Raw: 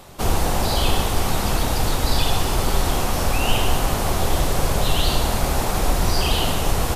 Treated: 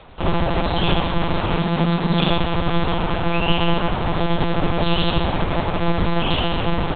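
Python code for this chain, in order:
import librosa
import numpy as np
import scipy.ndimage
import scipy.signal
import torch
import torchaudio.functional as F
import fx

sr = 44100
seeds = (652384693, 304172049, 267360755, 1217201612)

y = fx.lpc_monotone(x, sr, seeds[0], pitch_hz=170.0, order=8)
y = fx.low_shelf_res(y, sr, hz=130.0, db=-8.5, q=3.0, at=(1.58, 2.29))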